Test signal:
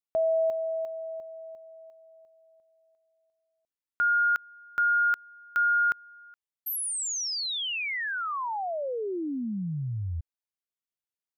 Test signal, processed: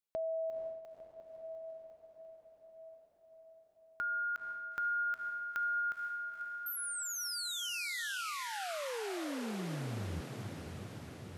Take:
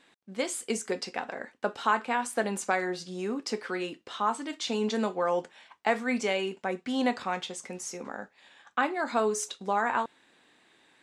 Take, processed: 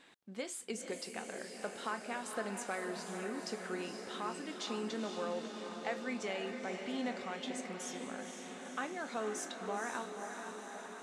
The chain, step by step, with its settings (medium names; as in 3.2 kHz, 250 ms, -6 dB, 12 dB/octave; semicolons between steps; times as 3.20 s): dynamic bell 950 Hz, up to -5 dB, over -45 dBFS, Q 2.7; compression 1.5:1, threshold -56 dBFS; on a send: echo that smears into a reverb 490 ms, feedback 71%, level -6 dB